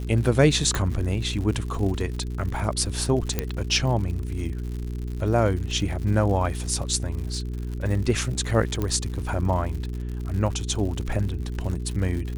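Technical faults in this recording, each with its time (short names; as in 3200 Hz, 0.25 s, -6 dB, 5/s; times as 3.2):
crackle 110/s -32 dBFS
hum 60 Hz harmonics 7 -30 dBFS
0.75 pop
3.39 pop -9 dBFS
8.82 pop -14 dBFS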